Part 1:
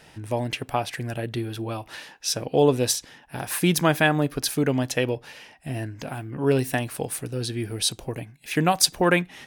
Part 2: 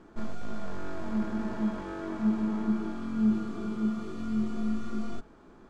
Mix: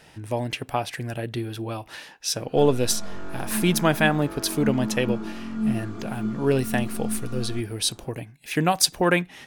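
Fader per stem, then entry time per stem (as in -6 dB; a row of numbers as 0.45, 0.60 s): -0.5, +0.5 dB; 0.00, 2.40 s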